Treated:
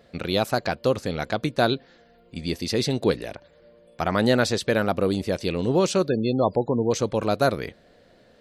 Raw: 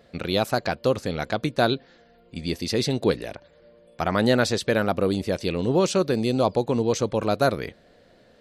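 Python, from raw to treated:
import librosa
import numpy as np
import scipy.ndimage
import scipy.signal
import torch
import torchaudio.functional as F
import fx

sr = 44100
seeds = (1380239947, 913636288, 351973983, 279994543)

y = fx.spec_gate(x, sr, threshold_db=-25, keep='strong', at=(6.07, 6.9), fade=0.02)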